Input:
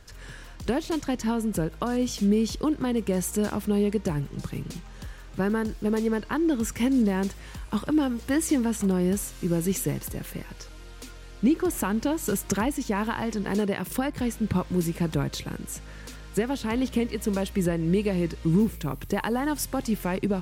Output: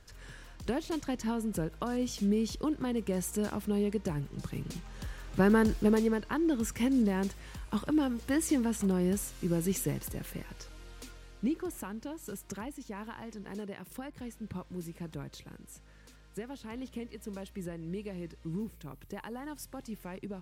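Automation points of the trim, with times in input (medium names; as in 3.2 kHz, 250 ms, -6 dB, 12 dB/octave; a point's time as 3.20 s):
4.28 s -6.5 dB
5.72 s +3 dB
6.19 s -5 dB
11.04 s -5 dB
11.97 s -15 dB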